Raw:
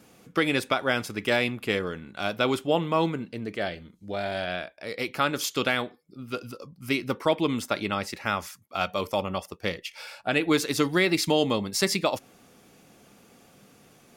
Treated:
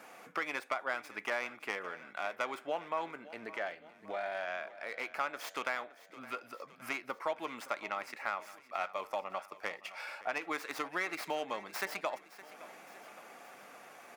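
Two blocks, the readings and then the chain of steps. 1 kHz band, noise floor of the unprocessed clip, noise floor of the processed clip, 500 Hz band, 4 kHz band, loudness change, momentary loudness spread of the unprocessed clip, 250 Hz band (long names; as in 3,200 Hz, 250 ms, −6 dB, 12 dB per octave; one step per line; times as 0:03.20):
−7.0 dB, −57 dBFS, −59 dBFS, −12.5 dB, −16.5 dB, −11.5 dB, 12 LU, −20.5 dB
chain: stylus tracing distortion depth 0.14 ms
high-pass filter 320 Hz 12 dB per octave
flat-topped bell 1,200 Hz +10.5 dB 2.3 octaves
downward compressor 2 to 1, threshold −45 dBFS, peak gain reduction 19 dB
on a send: repeating echo 565 ms, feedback 58%, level −17.5 dB
on the sum: level −2 dB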